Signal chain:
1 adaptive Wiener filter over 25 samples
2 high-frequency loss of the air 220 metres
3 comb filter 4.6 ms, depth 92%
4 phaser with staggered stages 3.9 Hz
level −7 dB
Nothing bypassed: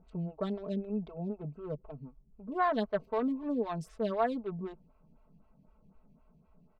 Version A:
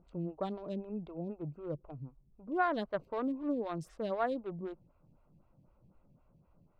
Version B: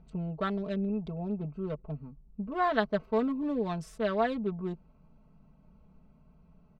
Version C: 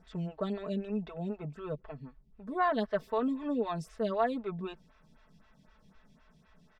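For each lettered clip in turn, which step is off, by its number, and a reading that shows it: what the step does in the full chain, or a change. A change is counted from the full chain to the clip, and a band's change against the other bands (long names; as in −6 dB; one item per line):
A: 3, 2 kHz band +3.5 dB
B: 4, 2 kHz band +2.5 dB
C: 1, 4 kHz band +2.0 dB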